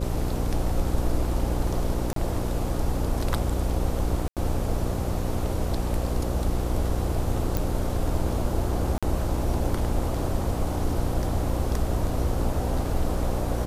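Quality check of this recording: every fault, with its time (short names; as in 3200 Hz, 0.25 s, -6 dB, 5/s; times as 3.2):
buzz 60 Hz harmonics 9 -29 dBFS
2.13–2.16 gap 33 ms
4.28–4.37 gap 87 ms
7.57 pop
8.98–9.03 gap 46 ms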